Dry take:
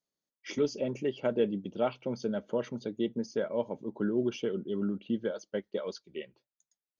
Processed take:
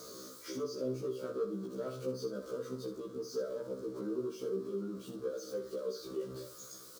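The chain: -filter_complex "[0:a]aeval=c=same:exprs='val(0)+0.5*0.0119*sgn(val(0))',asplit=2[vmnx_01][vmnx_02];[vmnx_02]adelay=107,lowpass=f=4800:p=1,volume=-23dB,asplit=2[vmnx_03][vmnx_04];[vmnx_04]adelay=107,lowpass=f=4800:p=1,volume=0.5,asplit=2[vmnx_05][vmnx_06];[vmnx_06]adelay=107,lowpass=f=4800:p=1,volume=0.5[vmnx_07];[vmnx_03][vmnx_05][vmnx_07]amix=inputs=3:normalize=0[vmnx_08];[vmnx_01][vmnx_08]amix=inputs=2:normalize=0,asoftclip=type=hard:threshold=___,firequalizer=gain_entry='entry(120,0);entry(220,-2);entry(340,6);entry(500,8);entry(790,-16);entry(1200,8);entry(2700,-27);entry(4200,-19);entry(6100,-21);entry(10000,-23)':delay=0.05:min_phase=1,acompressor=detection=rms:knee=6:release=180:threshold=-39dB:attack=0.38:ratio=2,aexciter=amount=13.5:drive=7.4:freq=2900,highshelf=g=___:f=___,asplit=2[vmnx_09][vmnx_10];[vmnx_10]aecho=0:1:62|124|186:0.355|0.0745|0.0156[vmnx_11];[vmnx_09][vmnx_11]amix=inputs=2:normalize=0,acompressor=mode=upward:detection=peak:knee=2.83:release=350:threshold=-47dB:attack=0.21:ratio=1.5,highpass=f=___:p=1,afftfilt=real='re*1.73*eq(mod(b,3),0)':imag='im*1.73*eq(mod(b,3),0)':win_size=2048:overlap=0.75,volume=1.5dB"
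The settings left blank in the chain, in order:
-24dB, -9, 2100, 93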